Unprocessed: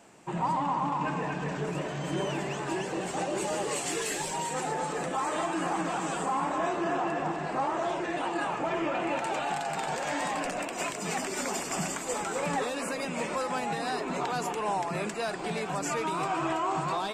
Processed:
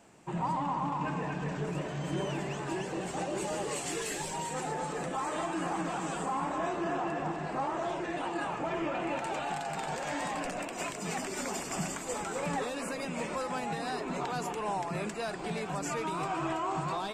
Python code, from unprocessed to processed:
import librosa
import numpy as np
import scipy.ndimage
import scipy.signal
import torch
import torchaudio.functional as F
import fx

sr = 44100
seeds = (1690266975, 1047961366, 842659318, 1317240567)

y = fx.low_shelf(x, sr, hz=150.0, db=7.5)
y = y * librosa.db_to_amplitude(-4.0)